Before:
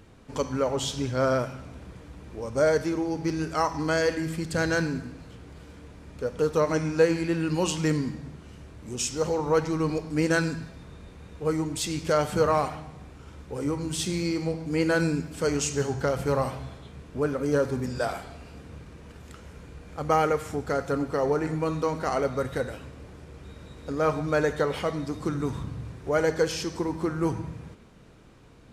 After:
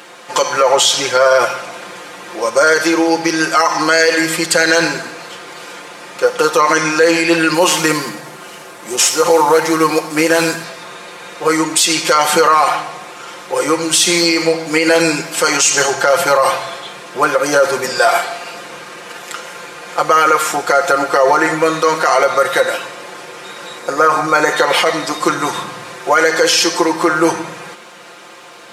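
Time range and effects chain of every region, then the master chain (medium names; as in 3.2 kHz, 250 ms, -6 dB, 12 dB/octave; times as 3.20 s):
7.54–10.64 s: CVSD coder 64 kbps + peaking EQ 3.9 kHz -4 dB 2.1 oct
23.78–24.52 s: peaking EQ 3.3 kHz -8 dB 1 oct + doubling 40 ms -12 dB
whole clip: high-pass 680 Hz 12 dB/octave; comb 5.7 ms, depth 92%; loudness maximiser +22.5 dB; trim -1 dB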